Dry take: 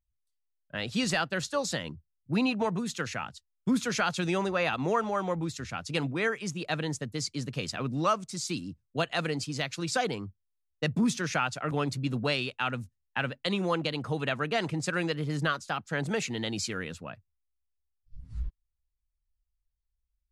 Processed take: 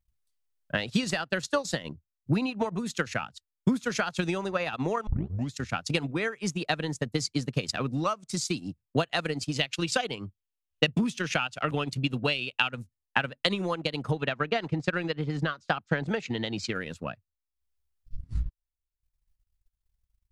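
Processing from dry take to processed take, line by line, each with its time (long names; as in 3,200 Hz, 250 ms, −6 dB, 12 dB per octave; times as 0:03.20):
0:05.07: tape start 0.46 s
0:09.51–0:12.69: parametric band 2,900 Hz +9 dB 0.55 octaves
0:14.11–0:16.75: low-pass filter 4,700 Hz
whole clip: downward compressor 2.5 to 1, threshold −33 dBFS; transient designer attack +8 dB, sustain −11 dB; level +3.5 dB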